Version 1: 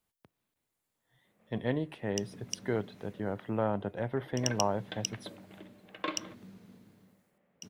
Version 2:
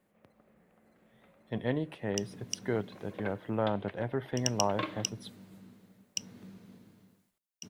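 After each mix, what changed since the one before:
first sound: entry -1.25 s; second sound: send +7.5 dB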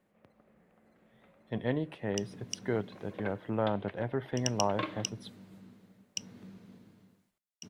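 master: add treble shelf 8.1 kHz -7.5 dB

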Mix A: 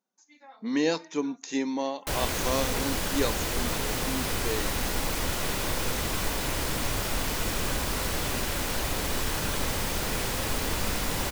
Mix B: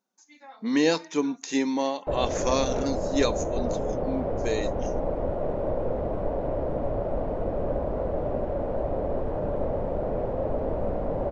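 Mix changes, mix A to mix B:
speech +3.5 dB; background: add resonant low-pass 600 Hz, resonance Q 3.9

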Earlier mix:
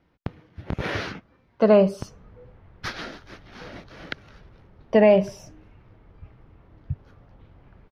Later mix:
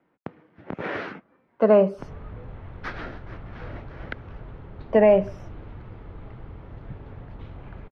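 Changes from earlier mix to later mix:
speech: add three-band isolator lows -21 dB, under 170 Hz, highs -18 dB, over 2.5 kHz; background +11.5 dB

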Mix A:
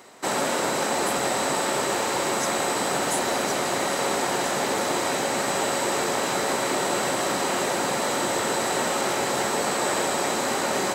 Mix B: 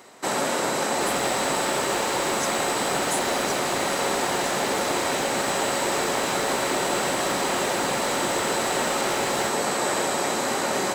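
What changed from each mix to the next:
second sound +11.5 dB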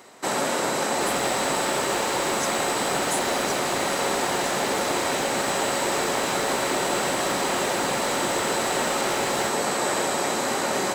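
no change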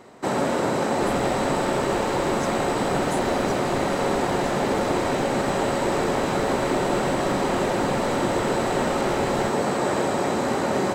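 master: add tilt EQ -3 dB/octave

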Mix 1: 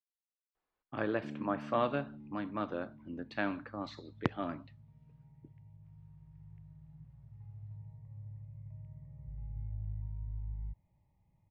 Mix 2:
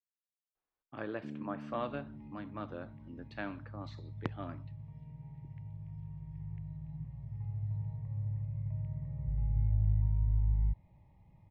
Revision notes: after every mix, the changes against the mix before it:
speech -6.0 dB; second sound +11.0 dB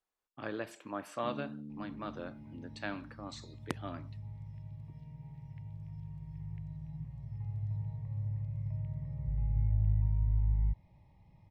speech: entry -0.55 s; master: remove distance through air 250 m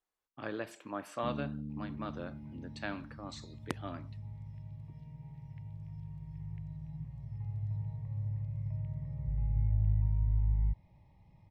first sound: remove high-pass 220 Hz 12 dB/octave

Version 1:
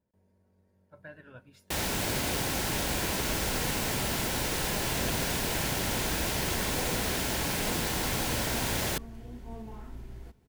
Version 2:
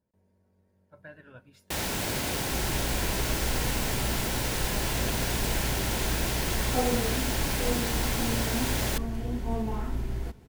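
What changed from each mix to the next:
second sound +12.0 dB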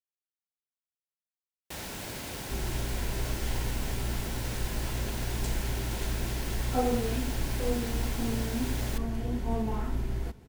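speech: muted; first sound -8.5 dB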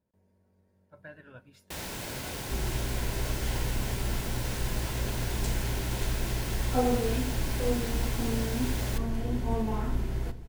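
speech: unmuted; reverb: on, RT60 0.70 s

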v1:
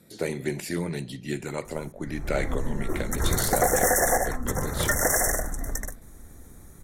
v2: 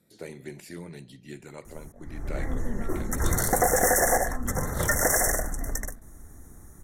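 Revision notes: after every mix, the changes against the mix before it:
speech -11.0 dB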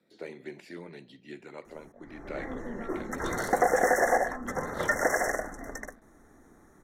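master: add three-band isolator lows -17 dB, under 210 Hz, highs -19 dB, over 4.7 kHz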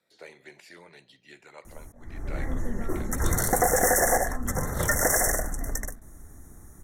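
speech: add three-band isolator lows -19 dB, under 520 Hz, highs -14 dB, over 5.7 kHz; master: remove three-band isolator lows -17 dB, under 210 Hz, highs -19 dB, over 4.7 kHz

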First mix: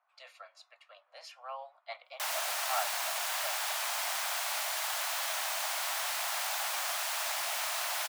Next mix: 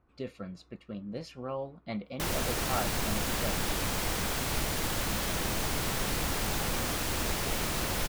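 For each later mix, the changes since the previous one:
master: remove steep high-pass 620 Hz 72 dB/octave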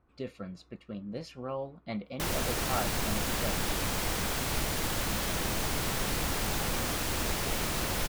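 no change

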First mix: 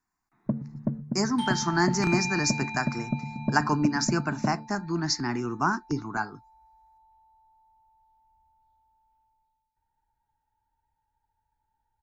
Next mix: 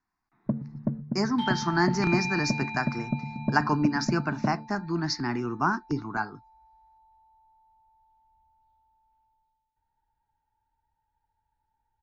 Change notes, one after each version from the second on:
master: add low-pass 5.1 kHz 24 dB/octave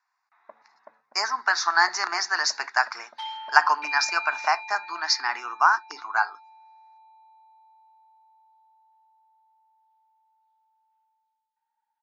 speech +8.5 dB; second sound: entry +1.80 s; master: add high-pass 780 Hz 24 dB/octave

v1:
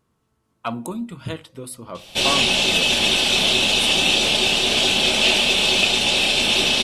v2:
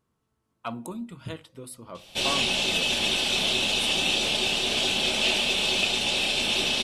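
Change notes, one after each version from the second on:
speech -7.0 dB; background -7.0 dB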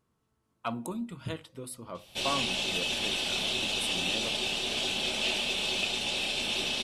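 background -6.0 dB

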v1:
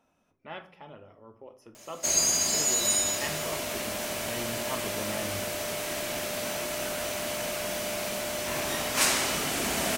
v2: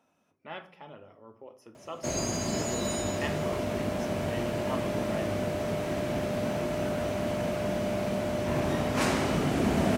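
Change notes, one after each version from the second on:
background: add tilt EQ -4.5 dB/octave; master: add high-pass 100 Hz 12 dB/octave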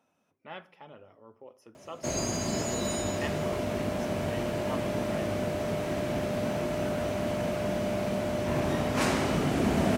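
speech: send -9.0 dB

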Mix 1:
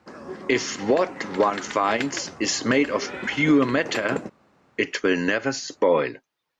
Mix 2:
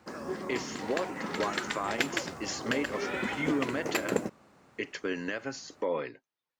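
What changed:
speech -12.0 dB; background: remove distance through air 64 m

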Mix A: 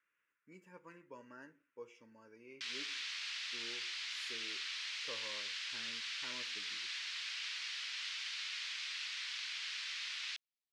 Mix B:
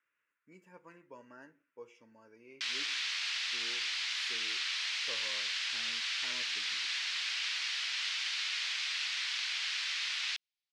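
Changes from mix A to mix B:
background +7.0 dB; master: add peaking EQ 730 Hz +9.5 dB 0.31 oct

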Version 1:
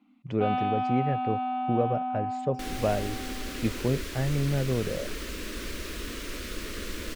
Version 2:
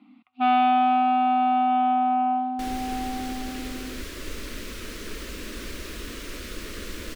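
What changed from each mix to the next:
speech: muted; first sound +9.0 dB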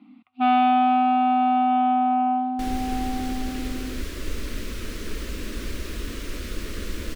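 master: add bass shelf 250 Hz +7.5 dB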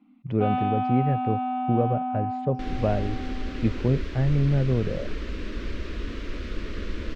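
speech: unmuted; first sound -7.5 dB; master: add distance through air 190 m

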